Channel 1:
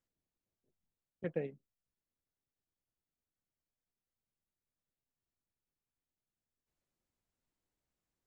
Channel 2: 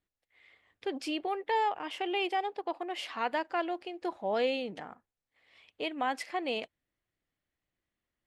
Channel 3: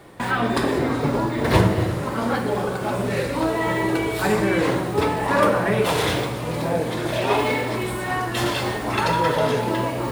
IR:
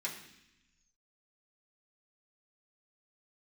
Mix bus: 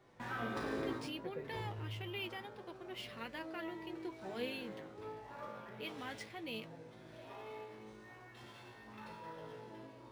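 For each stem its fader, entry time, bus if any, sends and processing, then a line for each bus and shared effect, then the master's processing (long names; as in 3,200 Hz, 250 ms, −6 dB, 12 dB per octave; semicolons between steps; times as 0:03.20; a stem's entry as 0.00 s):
−6.0 dB, 0.00 s, no send, no processing
−1.5 dB, 0.00 s, no send, parametric band 780 Hz −14.5 dB 1.6 octaves
0:00.93 −2 dB → 0:01.15 −14.5 dB, 0.00 s, no send, tuned comb filter 54 Hz, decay 1.2 s, harmonics all, mix 90%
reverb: not used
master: flanger 0.71 Hz, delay 7.7 ms, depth 1.9 ms, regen +47%; linearly interpolated sample-rate reduction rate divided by 3×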